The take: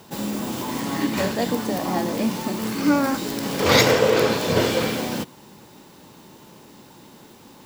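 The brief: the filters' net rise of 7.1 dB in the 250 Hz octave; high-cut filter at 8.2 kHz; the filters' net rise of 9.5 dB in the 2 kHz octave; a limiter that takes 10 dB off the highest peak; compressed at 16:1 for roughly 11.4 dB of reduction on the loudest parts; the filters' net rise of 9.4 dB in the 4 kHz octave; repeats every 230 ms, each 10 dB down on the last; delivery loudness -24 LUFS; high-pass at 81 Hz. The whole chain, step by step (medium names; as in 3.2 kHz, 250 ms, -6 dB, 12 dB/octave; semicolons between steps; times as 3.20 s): high-pass 81 Hz; low-pass 8.2 kHz; peaking EQ 250 Hz +8.5 dB; peaking EQ 2 kHz +9 dB; peaking EQ 4 kHz +9 dB; compression 16:1, threshold -15 dBFS; peak limiter -15 dBFS; feedback delay 230 ms, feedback 32%, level -10 dB; trim -1 dB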